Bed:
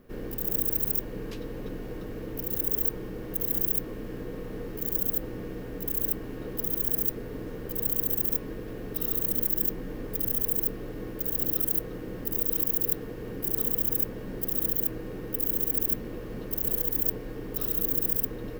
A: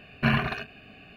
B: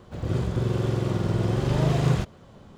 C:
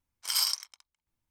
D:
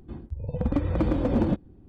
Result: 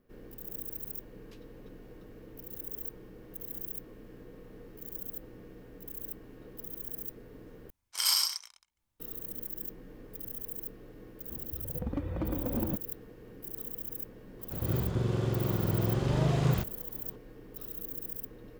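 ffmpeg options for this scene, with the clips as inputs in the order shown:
ffmpeg -i bed.wav -i cue0.wav -i cue1.wav -i cue2.wav -i cue3.wav -filter_complex "[0:a]volume=-13dB[link_01];[3:a]aecho=1:1:34.99|125.4:0.562|0.447[link_02];[link_01]asplit=2[link_03][link_04];[link_03]atrim=end=7.704[link_05];[link_02]atrim=end=1.3,asetpts=PTS-STARTPTS,volume=-0.5dB[link_06];[link_04]atrim=start=8.996[link_07];[4:a]atrim=end=1.88,asetpts=PTS-STARTPTS,volume=-9.5dB,afade=type=in:duration=0.004:curve=hsin,afade=type=out:start_time=1.876:duration=0.004:curve=hsin,adelay=11210[link_08];[2:a]atrim=end=2.77,asetpts=PTS-STARTPTS,volume=-5dB,afade=type=in:duration=0.004:curve=hsin,afade=type=out:start_time=2.766:duration=0.004:curve=hsin,adelay=14390[link_09];[link_05][link_06]acrossfade=duration=0.004:curve1=hsin:curve2=hsin[link_10];[link_10][link_07]acrossfade=duration=0.004:curve1=hsin:curve2=hsin[link_11];[link_11][link_08][link_09]amix=inputs=3:normalize=0" out.wav

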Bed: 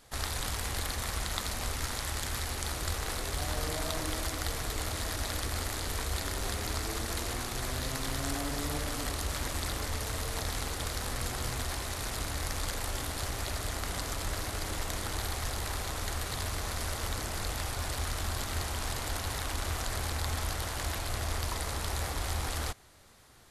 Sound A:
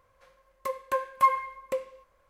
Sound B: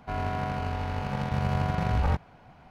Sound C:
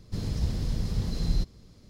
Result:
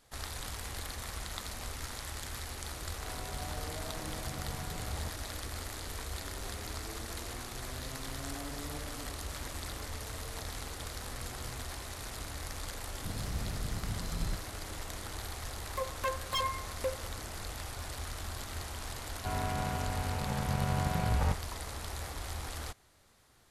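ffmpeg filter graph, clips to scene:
ffmpeg -i bed.wav -i cue0.wav -i cue1.wav -i cue2.wav -filter_complex "[2:a]asplit=2[link_01][link_02];[0:a]volume=-6.5dB[link_03];[1:a]aeval=exprs='0.0794*(abs(mod(val(0)/0.0794+3,4)-2)-1)':channel_layout=same[link_04];[link_01]atrim=end=2.7,asetpts=PTS-STARTPTS,volume=-16dB,afade=type=in:duration=0.004:curve=hsin,afade=type=out:start_time=2.696:duration=0.004:curve=hsin,adelay=2930[link_05];[3:a]atrim=end=1.89,asetpts=PTS-STARTPTS,volume=-8.5dB,afade=type=in:duration=0.004:curve=hsin,afade=type=out:start_time=1.886:duration=0.004:curve=hsin,adelay=12920[link_06];[link_04]atrim=end=2.29,asetpts=PTS-STARTPTS,volume=-4dB,afade=type=in:duration=0.004:curve=hsin,afade=type=out:start_time=2.286:duration=0.004:curve=hsin,adelay=15120[link_07];[link_02]atrim=end=2.7,asetpts=PTS-STARTPTS,volume=-4.5dB,afade=type=in:duration=0.004:curve=hsin,afade=type=out:start_time=2.696:duration=0.004:curve=hsin,adelay=19170[link_08];[link_03][link_05][link_06][link_07][link_08]amix=inputs=5:normalize=0" out.wav

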